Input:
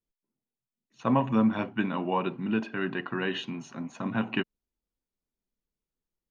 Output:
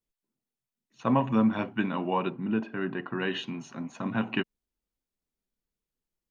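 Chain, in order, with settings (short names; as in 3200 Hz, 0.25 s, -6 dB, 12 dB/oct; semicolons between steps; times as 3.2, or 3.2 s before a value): 2.3–3.2 high shelf 2500 Hz -11.5 dB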